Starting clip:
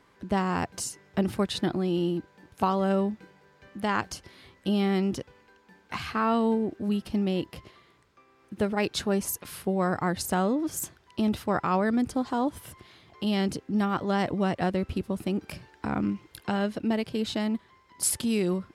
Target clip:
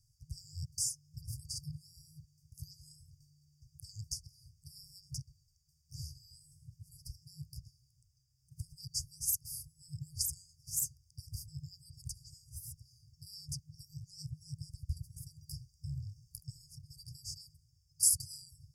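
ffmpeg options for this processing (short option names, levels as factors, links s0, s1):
-af "afftfilt=real='re*(1-between(b*sr/4096,160,4600))':imag='im*(1-between(b*sr/4096,160,4600))':win_size=4096:overlap=0.75"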